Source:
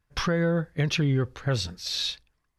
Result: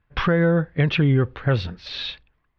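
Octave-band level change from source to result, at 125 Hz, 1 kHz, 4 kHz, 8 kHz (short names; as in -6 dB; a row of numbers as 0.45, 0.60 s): +6.0 dB, +6.0 dB, -1.0 dB, under -15 dB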